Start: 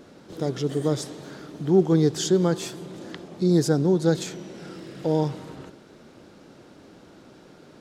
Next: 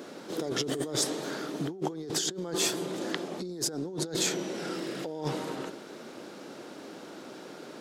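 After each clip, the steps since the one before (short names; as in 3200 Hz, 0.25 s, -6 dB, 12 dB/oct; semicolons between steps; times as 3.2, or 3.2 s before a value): HPF 260 Hz 12 dB/oct; negative-ratio compressor -33 dBFS, ratio -1; high shelf 9900 Hz +4.5 dB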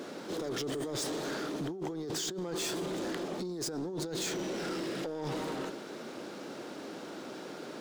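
median filter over 3 samples; in parallel at 0 dB: negative-ratio compressor -34 dBFS; on the sum: soft clip -25 dBFS, distortion -13 dB; gain -5 dB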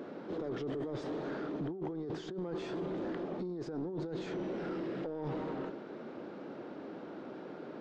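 tape spacing loss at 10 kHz 39 dB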